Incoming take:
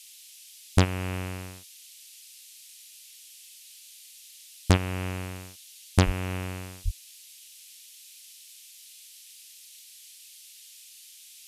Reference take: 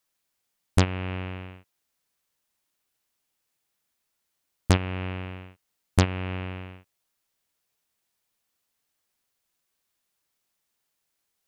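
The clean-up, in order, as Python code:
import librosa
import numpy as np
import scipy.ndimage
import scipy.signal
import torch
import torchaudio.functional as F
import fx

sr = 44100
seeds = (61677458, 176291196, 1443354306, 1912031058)

y = fx.highpass(x, sr, hz=140.0, slope=24, at=(6.05, 6.17), fade=0.02)
y = fx.highpass(y, sr, hz=140.0, slope=24, at=(6.84, 6.96), fade=0.02)
y = fx.noise_reduce(y, sr, print_start_s=10.84, print_end_s=11.34, reduce_db=29.0)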